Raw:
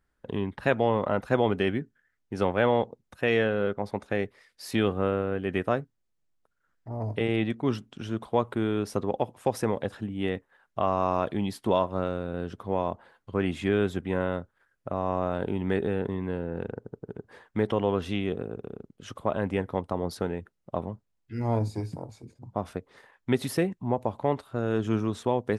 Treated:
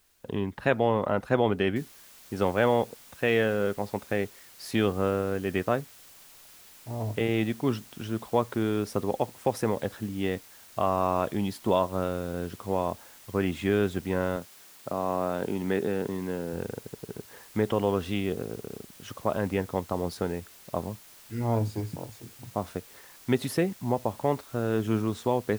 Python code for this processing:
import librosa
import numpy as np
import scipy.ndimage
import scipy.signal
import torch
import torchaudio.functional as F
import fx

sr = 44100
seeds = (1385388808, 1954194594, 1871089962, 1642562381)

y = fx.noise_floor_step(x, sr, seeds[0], at_s=1.76, before_db=-67, after_db=-52, tilt_db=0.0)
y = fx.highpass(y, sr, hz=140.0, slope=12, at=(14.36, 16.53))